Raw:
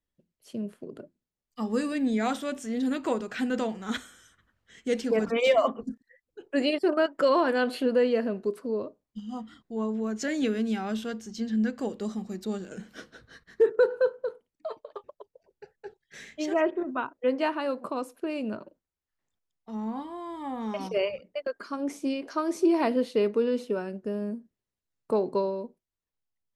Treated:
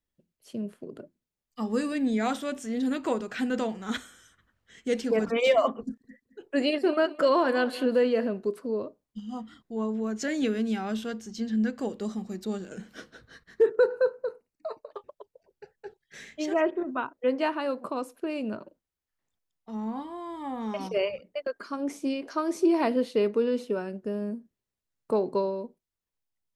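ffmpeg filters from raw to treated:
-filter_complex "[0:a]asettb=1/sr,asplit=3[s0][s1][s2];[s0]atrim=end=5.824[s3];[s1]atrim=start=5.82:end=8.27,asetpts=PTS-STARTPTS,afade=t=in:d=0.004:c=qsin,afade=t=out:st=2.446:d=0.004:c=qsin,aecho=1:1:216|432:0.158|0.0349,atrim=end_sample=108045[s4];[s2]atrim=start=8.266[s5];[s3][s4]acrossfade=d=0.004:c1=hsin:c2=qsin[s6];[s6][s5]acrossfade=d=0.004:c1=qsin:c2=hsin,asettb=1/sr,asplit=3[s7][s8][s9];[s7]atrim=end=13.794[s10];[s8]atrim=start=13.79:end=14.91,asetpts=PTS-STARTPTS,afade=t=in:d=0.004:c=qsin,afade=t=out:st=1.116:d=0.004:c=qsin,asuperstop=centerf=3300:order=12:qfactor=3.9[s11];[s9]atrim=start=14.906[s12];[s10][s11]acrossfade=d=0.004:c1=hsin:c2=qsin[s13];[s13][s12]acrossfade=d=0.004:c1=qsin:c2=hsin"

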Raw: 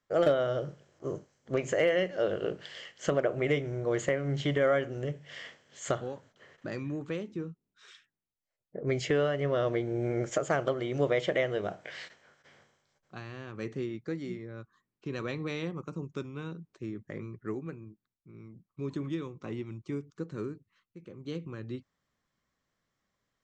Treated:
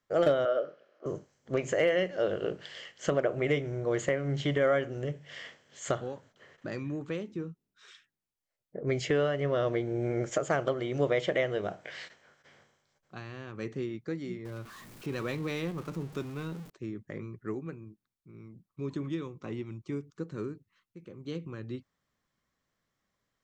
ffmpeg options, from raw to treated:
-filter_complex "[0:a]asettb=1/sr,asplit=3[s0][s1][s2];[s0]atrim=end=0.454[s3];[s1]atrim=start=0.45:end=1.06,asetpts=PTS-STARTPTS,afade=t=in:d=0.004:c=qsin,afade=t=out:st=0.606:d=0.004:c=qsin,highpass=f=280:w=0.5412,highpass=f=280:w=1.3066,equalizer=f=340:t=q:w=4:g=-5,equalizer=f=580:t=q:w=4:g=7,equalizer=f=910:t=q:w=4:g=-9,equalizer=f=1300:t=q:w=4:g=7,equalizer=f=2000:t=q:w=4:g=-3,equalizer=f=3600:t=q:w=4:g=-5,lowpass=f=4200:w=0.5412,lowpass=f=4200:w=1.3066[s4];[s2]atrim=start=1.056[s5];[s3][s4]acrossfade=d=0.004:c1=hsin:c2=qsin[s6];[s6][s5]acrossfade=d=0.004:c1=qsin:c2=hsin,asettb=1/sr,asplit=3[s7][s8][s9];[s7]atrim=end=14.454[s10];[s8]atrim=start=14.45:end=16.7,asetpts=PTS-STARTPTS,afade=t=in:d=0.004:c=qsin,afade=t=out:st=2.246:d=0.004:c=qsin,aeval=exprs='val(0)+0.5*0.00668*sgn(val(0))':c=same[s11];[s9]atrim=start=16.696[s12];[s10][s11]acrossfade=d=0.004:c1=hsin:c2=qsin[s13];[s13][s12]acrossfade=d=0.004:c1=qsin:c2=hsin"

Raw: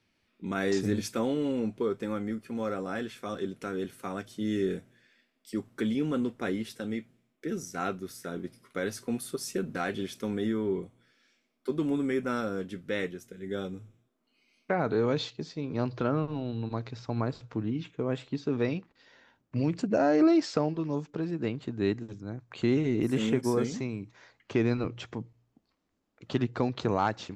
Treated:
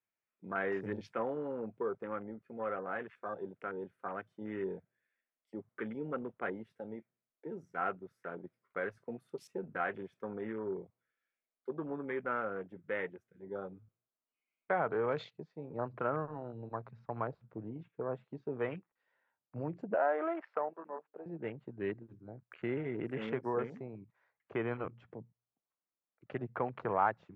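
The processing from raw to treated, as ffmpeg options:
-filter_complex "[0:a]asettb=1/sr,asplit=3[s0][s1][s2];[s0]atrim=end=19.944[s3];[s1]atrim=start=19.94:end=21.26,asetpts=PTS-STARTPTS,afade=t=in:d=0.004:c=qsin,afade=t=out:st=1.316:d=0.004:c=qsin,highpass=510,lowpass=2300[s4];[s2]atrim=start=21.256[s5];[s3][s4]acrossfade=d=0.004:c1=hsin:c2=qsin[s6];[s6][s5]acrossfade=d=0.004:c1=qsin:c2=hsin,equalizer=f=260:t=o:w=1.4:g=-14.5,afwtdn=0.00708,acrossover=split=160 2200:gain=0.158 1 0.0708[s7][s8][s9];[s7][s8][s9]amix=inputs=3:normalize=0,volume=1.12"

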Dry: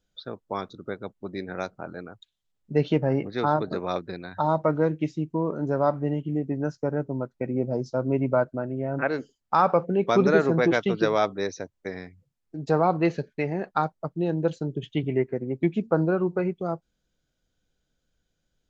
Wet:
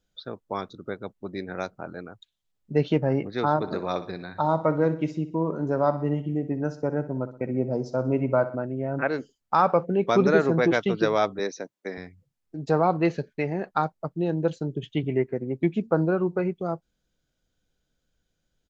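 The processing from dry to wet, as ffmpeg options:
-filter_complex "[0:a]asplit=3[s0][s1][s2];[s0]afade=t=out:st=3.61:d=0.02[s3];[s1]aecho=1:1:62|124|186|248|310:0.211|0.0993|0.0467|0.0219|0.0103,afade=t=in:st=3.61:d=0.02,afade=t=out:st=8.55:d=0.02[s4];[s2]afade=t=in:st=8.55:d=0.02[s5];[s3][s4][s5]amix=inputs=3:normalize=0,asettb=1/sr,asplit=3[s6][s7][s8];[s6]atrim=end=11.394[s9];[s7]atrim=start=11.39:end=11.98,asetpts=PTS-STARTPTS,afade=t=in:d=0.004:c=qsin,afade=t=out:st=0.586:d=0.004:c=qsin,highpass=f=180:w=0.5412,highpass=f=180:w=1.3066[s10];[s8]atrim=start=11.976[s11];[s9][s10]acrossfade=d=0.004:c1=hsin:c2=qsin[s12];[s12][s11]acrossfade=d=0.004:c1=qsin:c2=hsin"

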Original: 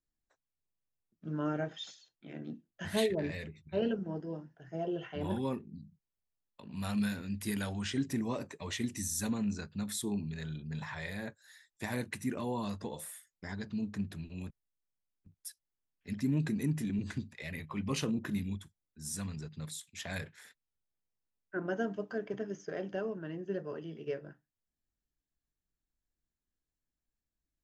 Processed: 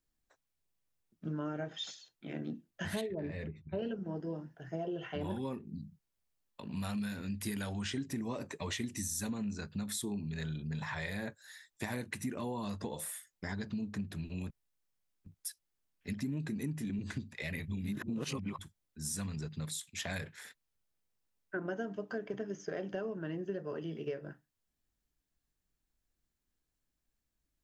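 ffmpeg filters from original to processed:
-filter_complex "[0:a]asettb=1/sr,asplit=3[s0][s1][s2];[s0]atrim=end=3.014[s3];[s1]atrim=start=3.01:end=3.79,asetpts=PTS-STARTPTS,afade=t=in:d=0.004:c=qsin,afade=t=out:st=0.776:d=0.004:c=qsin,lowpass=f=1100:p=1[s4];[s2]atrim=start=3.786[s5];[s3][s4]acrossfade=d=0.004:c1=hsin:c2=qsin[s6];[s6][s5]acrossfade=d=0.004:c1=qsin:c2=hsin,asplit=3[s7][s8][s9];[s7]atrim=end=17.682[s10];[s8]atrim=start=17.678:end=18.592,asetpts=PTS-STARTPTS,areverse[s11];[s9]atrim=start=18.588[s12];[s10][s11]acrossfade=d=0.004:c1=hsin:c2=hsin[s13];[s13][s12]acrossfade=d=0.004:c1=hsin:c2=hsin,acompressor=threshold=0.01:ratio=5,volume=1.78"

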